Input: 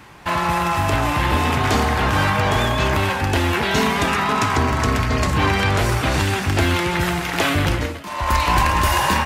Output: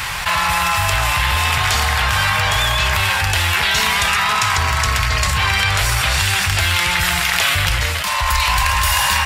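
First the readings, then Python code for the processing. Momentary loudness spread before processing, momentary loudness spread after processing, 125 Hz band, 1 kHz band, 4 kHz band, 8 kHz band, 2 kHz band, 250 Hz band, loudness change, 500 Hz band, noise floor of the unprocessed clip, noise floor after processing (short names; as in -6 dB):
3 LU, 2 LU, -0.5 dB, +1.0 dB, +8.5 dB, +9.0 dB, +5.5 dB, -11.5 dB, +3.5 dB, -6.5 dB, -29 dBFS, -20 dBFS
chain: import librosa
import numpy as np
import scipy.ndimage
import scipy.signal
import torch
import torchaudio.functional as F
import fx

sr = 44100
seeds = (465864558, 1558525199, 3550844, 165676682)

y = fx.tone_stack(x, sr, knobs='10-0-10')
y = fx.notch(y, sr, hz=6300.0, q=22.0)
y = fx.env_flatten(y, sr, amount_pct=70)
y = y * 10.0 ** (6.5 / 20.0)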